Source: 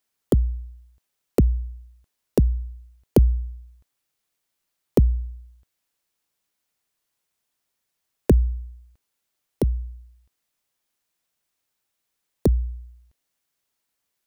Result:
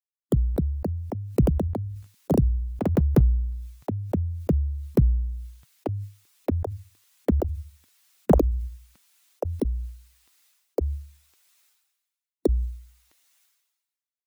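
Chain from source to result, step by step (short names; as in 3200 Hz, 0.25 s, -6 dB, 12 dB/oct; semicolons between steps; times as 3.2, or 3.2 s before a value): per-bin expansion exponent 1.5; hard clip -10.5 dBFS, distortion -25 dB; high-pass sweep 130 Hz -> 330 Hz, 7.12–10.56; echoes that change speed 0.309 s, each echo +3 st, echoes 3; sustainer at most 49 dB/s; gain -3.5 dB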